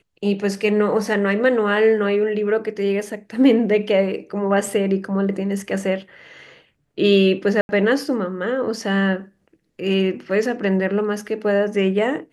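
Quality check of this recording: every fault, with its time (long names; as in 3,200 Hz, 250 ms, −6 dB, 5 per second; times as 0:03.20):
0:07.61–0:07.69: drop-out 81 ms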